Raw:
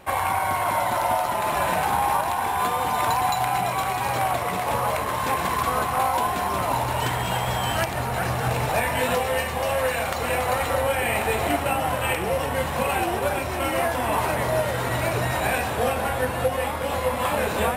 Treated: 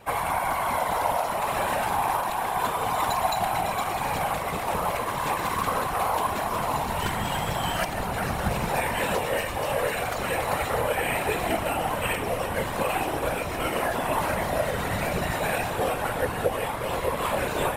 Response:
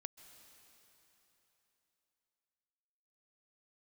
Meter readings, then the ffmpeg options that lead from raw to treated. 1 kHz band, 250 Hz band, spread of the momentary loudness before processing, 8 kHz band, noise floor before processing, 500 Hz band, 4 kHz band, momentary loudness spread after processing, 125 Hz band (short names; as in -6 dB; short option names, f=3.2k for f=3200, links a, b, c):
-3.0 dB, -1.5 dB, 2 LU, -3.0 dB, -28 dBFS, -2.5 dB, -2.5 dB, 3 LU, -4.0 dB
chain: -af "acontrast=52,afftfilt=real='hypot(re,im)*cos(2*PI*random(0))':imag='hypot(re,im)*sin(2*PI*random(1))':win_size=512:overlap=0.75,volume=-2.5dB"